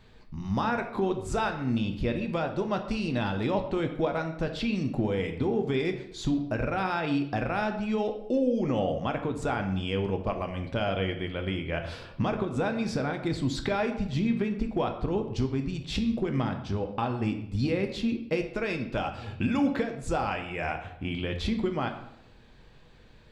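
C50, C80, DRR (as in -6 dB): 9.5 dB, 11.5 dB, 5.0 dB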